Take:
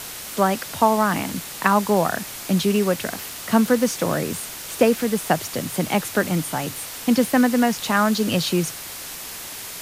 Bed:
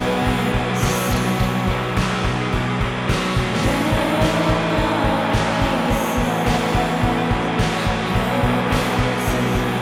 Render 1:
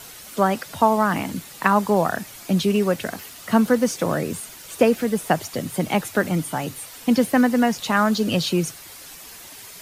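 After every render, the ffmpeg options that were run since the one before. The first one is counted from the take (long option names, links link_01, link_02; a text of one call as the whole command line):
ffmpeg -i in.wav -af "afftdn=noise_reduction=9:noise_floor=-35" out.wav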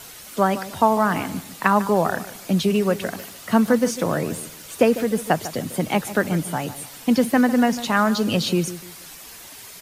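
ffmpeg -i in.wav -filter_complex "[0:a]asplit=2[link_01][link_02];[link_02]adelay=149,lowpass=frequency=2000:poles=1,volume=-13.5dB,asplit=2[link_03][link_04];[link_04]adelay=149,lowpass=frequency=2000:poles=1,volume=0.31,asplit=2[link_05][link_06];[link_06]adelay=149,lowpass=frequency=2000:poles=1,volume=0.31[link_07];[link_01][link_03][link_05][link_07]amix=inputs=4:normalize=0" out.wav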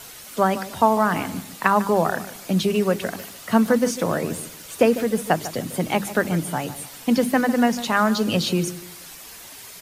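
ffmpeg -i in.wav -af "bandreject=frequency=50:width_type=h:width=6,bandreject=frequency=100:width_type=h:width=6,bandreject=frequency=150:width_type=h:width=6,bandreject=frequency=200:width_type=h:width=6,bandreject=frequency=250:width_type=h:width=6,bandreject=frequency=300:width_type=h:width=6,bandreject=frequency=350:width_type=h:width=6" out.wav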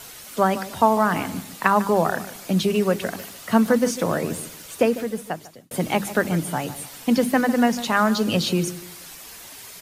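ffmpeg -i in.wav -filter_complex "[0:a]asplit=2[link_01][link_02];[link_01]atrim=end=5.71,asetpts=PTS-STARTPTS,afade=type=out:start_time=4.59:duration=1.12[link_03];[link_02]atrim=start=5.71,asetpts=PTS-STARTPTS,afade=type=in:duration=0.004:curve=hsin[link_04];[link_03][link_04]concat=n=2:v=0:a=1" out.wav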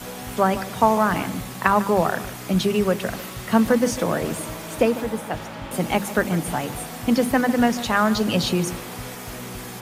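ffmpeg -i in.wav -i bed.wav -filter_complex "[1:a]volume=-16dB[link_01];[0:a][link_01]amix=inputs=2:normalize=0" out.wav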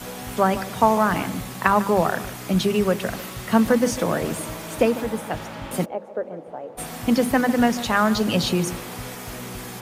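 ffmpeg -i in.wav -filter_complex "[0:a]asplit=3[link_01][link_02][link_03];[link_01]afade=type=out:start_time=5.84:duration=0.02[link_04];[link_02]bandpass=frequency=530:width_type=q:width=3.5,afade=type=in:start_time=5.84:duration=0.02,afade=type=out:start_time=6.77:duration=0.02[link_05];[link_03]afade=type=in:start_time=6.77:duration=0.02[link_06];[link_04][link_05][link_06]amix=inputs=3:normalize=0" out.wav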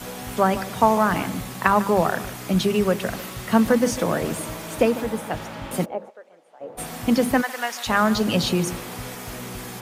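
ffmpeg -i in.wav -filter_complex "[0:a]asplit=3[link_01][link_02][link_03];[link_01]afade=type=out:start_time=6.09:duration=0.02[link_04];[link_02]bandpass=frequency=6900:width_type=q:width=0.54,afade=type=in:start_time=6.09:duration=0.02,afade=type=out:start_time=6.6:duration=0.02[link_05];[link_03]afade=type=in:start_time=6.6:duration=0.02[link_06];[link_04][link_05][link_06]amix=inputs=3:normalize=0,asplit=3[link_07][link_08][link_09];[link_07]afade=type=out:start_time=7.41:duration=0.02[link_10];[link_08]highpass=940,afade=type=in:start_time=7.41:duration=0.02,afade=type=out:start_time=7.86:duration=0.02[link_11];[link_09]afade=type=in:start_time=7.86:duration=0.02[link_12];[link_10][link_11][link_12]amix=inputs=3:normalize=0" out.wav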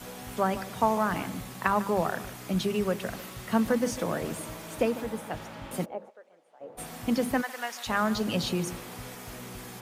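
ffmpeg -i in.wav -af "volume=-7.5dB" out.wav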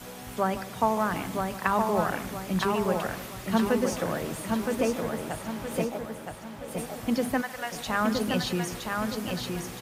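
ffmpeg -i in.wav -af "aecho=1:1:968|1936|2904|3872|4840:0.631|0.252|0.101|0.0404|0.0162" out.wav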